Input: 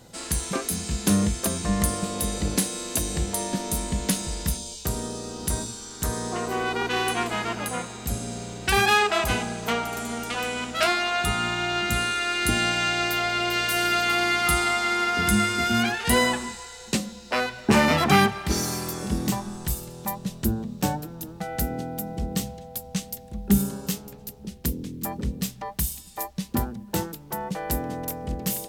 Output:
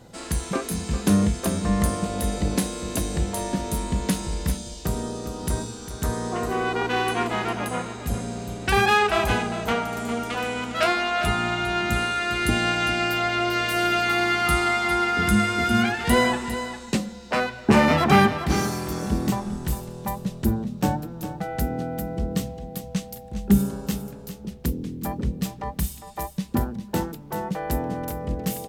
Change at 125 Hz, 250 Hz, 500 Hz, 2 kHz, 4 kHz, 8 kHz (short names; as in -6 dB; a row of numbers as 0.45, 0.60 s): +3.0, +2.5, +2.5, +0.5, -2.0, -5.0 dB